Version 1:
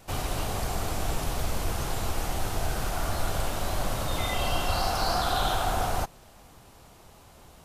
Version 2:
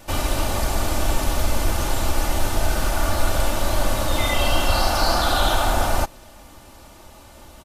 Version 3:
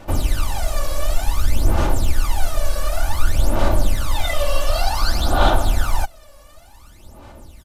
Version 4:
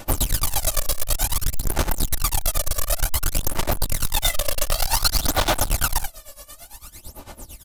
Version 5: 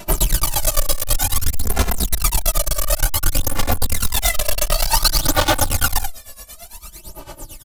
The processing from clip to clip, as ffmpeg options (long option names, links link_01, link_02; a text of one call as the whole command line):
ffmpeg -i in.wav -af "aecho=1:1:3.4:0.51,volume=6.5dB" out.wav
ffmpeg -i in.wav -af "aphaser=in_gain=1:out_gain=1:delay=1.8:decay=0.77:speed=0.55:type=sinusoidal,volume=-6.5dB" out.wav
ffmpeg -i in.wav -af "volume=19dB,asoftclip=hard,volume=-19dB,crystalizer=i=3:c=0,tremolo=f=8.9:d=0.87,volume=3.5dB" out.wav
ffmpeg -i in.wav -filter_complex "[0:a]asplit=2[link_01][link_02];[link_02]adelay=2.6,afreqshift=-0.44[link_03];[link_01][link_03]amix=inputs=2:normalize=1,volume=7dB" out.wav